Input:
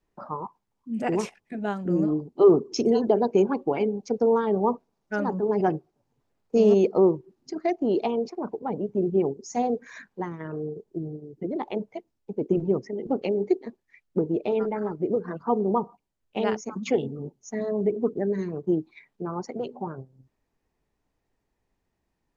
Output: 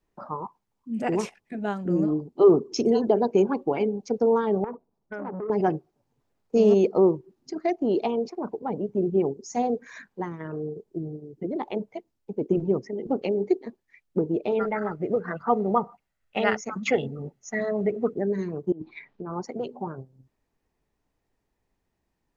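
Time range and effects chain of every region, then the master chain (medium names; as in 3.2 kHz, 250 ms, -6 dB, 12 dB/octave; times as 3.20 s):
4.64–5.50 s: resonances exaggerated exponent 1.5 + compression 16:1, threshold -27 dBFS + transformer saturation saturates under 810 Hz
14.59–18.16 s: peaking EQ 1.8 kHz +11 dB 1.2 oct + comb 1.5 ms, depth 36%
18.72–19.31 s: compressor with a negative ratio -37 dBFS + Gaussian low-pass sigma 1.9 samples
whole clip: none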